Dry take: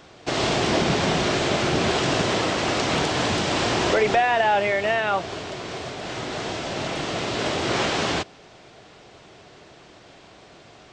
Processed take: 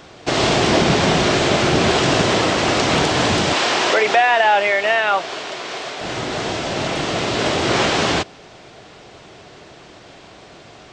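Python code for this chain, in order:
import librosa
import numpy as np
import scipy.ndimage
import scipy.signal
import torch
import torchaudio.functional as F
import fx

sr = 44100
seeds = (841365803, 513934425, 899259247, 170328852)

y = fx.weighting(x, sr, curve='A', at=(3.53, 6.01))
y = y * librosa.db_to_amplitude(6.0)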